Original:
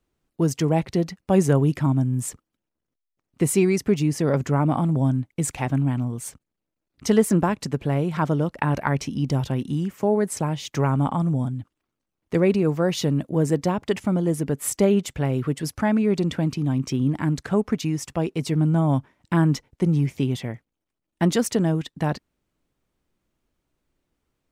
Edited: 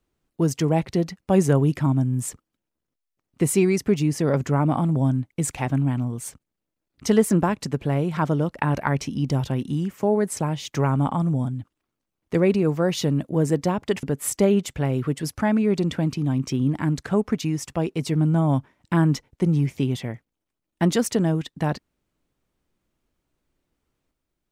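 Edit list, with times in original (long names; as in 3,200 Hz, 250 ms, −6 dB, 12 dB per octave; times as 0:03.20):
0:14.03–0:14.43: remove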